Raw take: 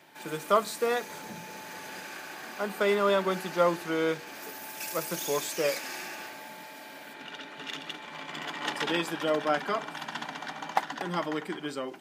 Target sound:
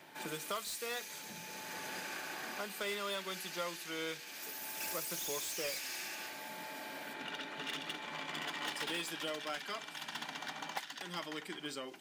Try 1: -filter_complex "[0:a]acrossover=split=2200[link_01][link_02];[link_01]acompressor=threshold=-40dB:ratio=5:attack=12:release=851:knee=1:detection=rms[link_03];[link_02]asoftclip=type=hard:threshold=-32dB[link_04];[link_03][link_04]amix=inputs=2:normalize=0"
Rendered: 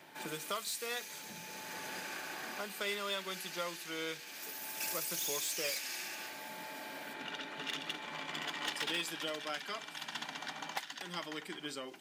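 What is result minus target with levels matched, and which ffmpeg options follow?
hard clipping: distortion −8 dB
-filter_complex "[0:a]acrossover=split=2200[link_01][link_02];[link_01]acompressor=threshold=-40dB:ratio=5:attack=12:release=851:knee=1:detection=rms[link_03];[link_02]asoftclip=type=hard:threshold=-38.5dB[link_04];[link_03][link_04]amix=inputs=2:normalize=0"

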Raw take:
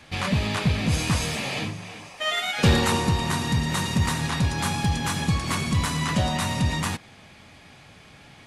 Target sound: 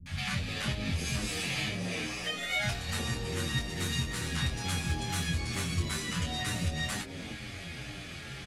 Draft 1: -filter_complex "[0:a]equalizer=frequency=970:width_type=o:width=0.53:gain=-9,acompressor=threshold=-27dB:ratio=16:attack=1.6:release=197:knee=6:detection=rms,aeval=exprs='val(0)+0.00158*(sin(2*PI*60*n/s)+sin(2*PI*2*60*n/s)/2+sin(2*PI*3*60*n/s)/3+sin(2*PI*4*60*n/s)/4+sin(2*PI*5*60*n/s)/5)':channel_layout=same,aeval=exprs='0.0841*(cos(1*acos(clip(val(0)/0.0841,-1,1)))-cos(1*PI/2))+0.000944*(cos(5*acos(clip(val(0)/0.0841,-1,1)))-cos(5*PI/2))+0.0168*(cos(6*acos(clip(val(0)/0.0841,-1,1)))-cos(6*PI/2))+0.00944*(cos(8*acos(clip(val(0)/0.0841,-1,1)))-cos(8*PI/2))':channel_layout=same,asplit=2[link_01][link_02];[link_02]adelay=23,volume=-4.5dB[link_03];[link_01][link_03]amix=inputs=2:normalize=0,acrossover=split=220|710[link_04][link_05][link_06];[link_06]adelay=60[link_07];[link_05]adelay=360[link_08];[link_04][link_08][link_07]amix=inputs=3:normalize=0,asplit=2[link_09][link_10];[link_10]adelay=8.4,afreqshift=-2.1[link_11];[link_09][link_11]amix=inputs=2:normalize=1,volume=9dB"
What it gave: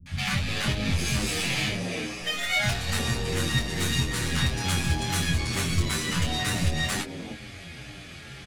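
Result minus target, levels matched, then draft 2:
downward compressor: peak gain reduction −6 dB
-filter_complex "[0:a]equalizer=frequency=970:width_type=o:width=0.53:gain=-9,acompressor=threshold=-33.5dB:ratio=16:attack=1.6:release=197:knee=6:detection=rms,aeval=exprs='val(0)+0.00158*(sin(2*PI*60*n/s)+sin(2*PI*2*60*n/s)/2+sin(2*PI*3*60*n/s)/3+sin(2*PI*4*60*n/s)/4+sin(2*PI*5*60*n/s)/5)':channel_layout=same,aeval=exprs='0.0841*(cos(1*acos(clip(val(0)/0.0841,-1,1)))-cos(1*PI/2))+0.000944*(cos(5*acos(clip(val(0)/0.0841,-1,1)))-cos(5*PI/2))+0.0168*(cos(6*acos(clip(val(0)/0.0841,-1,1)))-cos(6*PI/2))+0.00944*(cos(8*acos(clip(val(0)/0.0841,-1,1)))-cos(8*PI/2))':channel_layout=same,asplit=2[link_01][link_02];[link_02]adelay=23,volume=-4.5dB[link_03];[link_01][link_03]amix=inputs=2:normalize=0,acrossover=split=220|710[link_04][link_05][link_06];[link_06]adelay=60[link_07];[link_05]adelay=360[link_08];[link_04][link_08][link_07]amix=inputs=3:normalize=0,asplit=2[link_09][link_10];[link_10]adelay=8.4,afreqshift=-2.1[link_11];[link_09][link_11]amix=inputs=2:normalize=1,volume=9dB"

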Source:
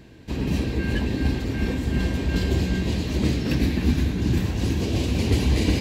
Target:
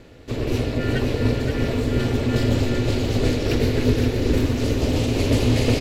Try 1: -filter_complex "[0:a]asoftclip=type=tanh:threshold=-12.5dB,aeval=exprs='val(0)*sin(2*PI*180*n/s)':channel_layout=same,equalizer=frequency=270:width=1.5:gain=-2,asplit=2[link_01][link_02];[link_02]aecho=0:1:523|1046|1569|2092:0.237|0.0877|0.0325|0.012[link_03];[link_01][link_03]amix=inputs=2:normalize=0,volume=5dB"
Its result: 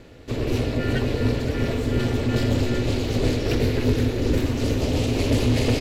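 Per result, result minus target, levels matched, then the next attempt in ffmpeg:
soft clipping: distortion +19 dB; echo-to-direct −6.5 dB
-filter_complex "[0:a]asoftclip=type=tanh:threshold=-1.5dB,aeval=exprs='val(0)*sin(2*PI*180*n/s)':channel_layout=same,equalizer=frequency=270:width=1.5:gain=-2,asplit=2[link_01][link_02];[link_02]aecho=0:1:523|1046|1569|2092:0.237|0.0877|0.0325|0.012[link_03];[link_01][link_03]amix=inputs=2:normalize=0,volume=5dB"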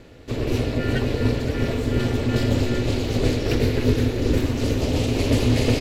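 echo-to-direct −6.5 dB
-filter_complex "[0:a]asoftclip=type=tanh:threshold=-1.5dB,aeval=exprs='val(0)*sin(2*PI*180*n/s)':channel_layout=same,equalizer=frequency=270:width=1.5:gain=-2,asplit=2[link_01][link_02];[link_02]aecho=0:1:523|1046|1569|2092:0.501|0.185|0.0686|0.0254[link_03];[link_01][link_03]amix=inputs=2:normalize=0,volume=5dB"

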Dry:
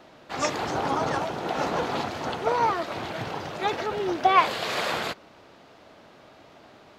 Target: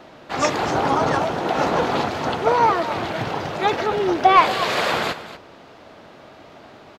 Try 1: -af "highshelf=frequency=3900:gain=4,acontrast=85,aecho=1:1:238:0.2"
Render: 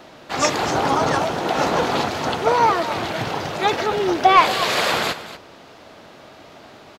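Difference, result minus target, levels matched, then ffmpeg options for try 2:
8,000 Hz band +5.0 dB
-af "highshelf=frequency=3900:gain=-4,acontrast=85,aecho=1:1:238:0.2"

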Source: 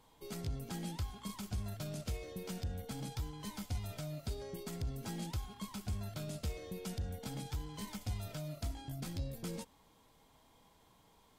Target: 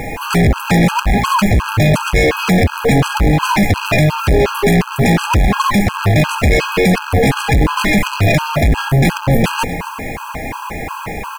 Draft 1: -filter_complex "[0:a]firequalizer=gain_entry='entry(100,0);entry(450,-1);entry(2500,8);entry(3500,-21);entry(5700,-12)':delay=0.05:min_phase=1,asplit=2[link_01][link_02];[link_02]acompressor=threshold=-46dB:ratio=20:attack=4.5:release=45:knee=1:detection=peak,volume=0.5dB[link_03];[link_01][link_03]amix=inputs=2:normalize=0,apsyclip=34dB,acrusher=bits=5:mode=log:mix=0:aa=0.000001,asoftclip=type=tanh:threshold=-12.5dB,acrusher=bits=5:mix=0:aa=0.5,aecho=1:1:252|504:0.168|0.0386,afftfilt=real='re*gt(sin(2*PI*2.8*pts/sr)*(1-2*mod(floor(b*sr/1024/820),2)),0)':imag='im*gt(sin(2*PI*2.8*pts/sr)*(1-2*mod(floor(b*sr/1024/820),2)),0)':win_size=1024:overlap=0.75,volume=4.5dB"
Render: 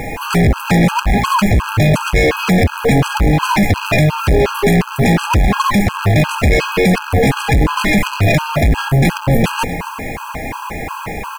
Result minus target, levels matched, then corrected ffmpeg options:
downward compressor: peak gain reduction +5.5 dB
-filter_complex "[0:a]firequalizer=gain_entry='entry(100,0);entry(450,-1);entry(2500,8);entry(3500,-21);entry(5700,-12)':delay=0.05:min_phase=1,asplit=2[link_01][link_02];[link_02]acompressor=threshold=-40dB:ratio=20:attack=4.5:release=45:knee=1:detection=peak,volume=0.5dB[link_03];[link_01][link_03]amix=inputs=2:normalize=0,apsyclip=34dB,acrusher=bits=5:mode=log:mix=0:aa=0.000001,asoftclip=type=tanh:threshold=-12.5dB,acrusher=bits=5:mix=0:aa=0.5,aecho=1:1:252|504:0.168|0.0386,afftfilt=real='re*gt(sin(2*PI*2.8*pts/sr)*(1-2*mod(floor(b*sr/1024/820),2)),0)':imag='im*gt(sin(2*PI*2.8*pts/sr)*(1-2*mod(floor(b*sr/1024/820),2)),0)':win_size=1024:overlap=0.75,volume=4.5dB"

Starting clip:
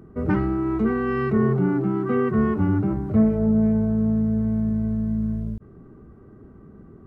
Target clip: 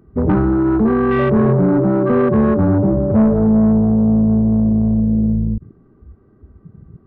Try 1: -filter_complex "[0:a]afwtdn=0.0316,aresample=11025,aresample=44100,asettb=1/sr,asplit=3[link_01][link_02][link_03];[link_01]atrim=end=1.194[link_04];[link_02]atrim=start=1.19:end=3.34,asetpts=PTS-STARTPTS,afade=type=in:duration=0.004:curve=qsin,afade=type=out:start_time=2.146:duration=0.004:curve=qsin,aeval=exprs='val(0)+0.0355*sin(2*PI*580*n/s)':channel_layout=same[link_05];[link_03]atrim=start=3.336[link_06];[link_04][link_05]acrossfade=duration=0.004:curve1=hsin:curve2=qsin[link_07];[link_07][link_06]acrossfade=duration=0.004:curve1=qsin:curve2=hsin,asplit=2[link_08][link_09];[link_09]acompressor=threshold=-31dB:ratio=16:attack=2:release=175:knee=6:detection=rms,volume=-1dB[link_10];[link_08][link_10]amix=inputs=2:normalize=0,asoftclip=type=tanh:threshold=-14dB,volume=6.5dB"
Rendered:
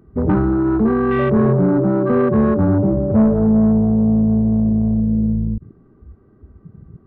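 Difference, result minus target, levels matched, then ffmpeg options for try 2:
downward compressor: peak gain reduction +9 dB
-filter_complex "[0:a]afwtdn=0.0316,aresample=11025,aresample=44100,asettb=1/sr,asplit=3[link_01][link_02][link_03];[link_01]atrim=end=1.194[link_04];[link_02]atrim=start=1.19:end=3.34,asetpts=PTS-STARTPTS,afade=type=in:duration=0.004:curve=qsin,afade=type=out:start_time=2.146:duration=0.004:curve=qsin,aeval=exprs='val(0)+0.0355*sin(2*PI*580*n/s)':channel_layout=same[link_05];[link_03]atrim=start=3.336[link_06];[link_04][link_05]acrossfade=duration=0.004:curve1=hsin:curve2=qsin[link_07];[link_07][link_06]acrossfade=duration=0.004:curve1=qsin:curve2=hsin,asplit=2[link_08][link_09];[link_09]acompressor=threshold=-21.5dB:ratio=16:attack=2:release=175:knee=6:detection=rms,volume=-1dB[link_10];[link_08][link_10]amix=inputs=2:normalize=0,asoftclip=type=tanh:threshold=-14dB,volume=6.5dB"

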